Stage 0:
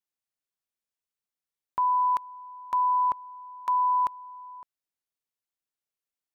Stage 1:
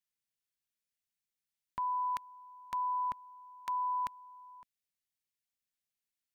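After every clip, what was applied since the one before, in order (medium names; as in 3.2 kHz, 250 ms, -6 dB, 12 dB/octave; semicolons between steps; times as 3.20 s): high-order bell 640 Hz -10 dB 2.4 oct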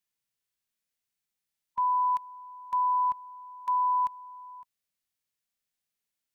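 harmonic-percussive split percussive -13 dB; trim +8 dB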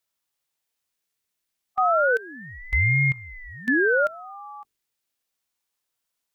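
hum notches 50/100/150/200/250/300 Hz; ring modulator with a swept carrier 650 Hz, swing 75%, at 0.33 Hz; trim +8.5 dB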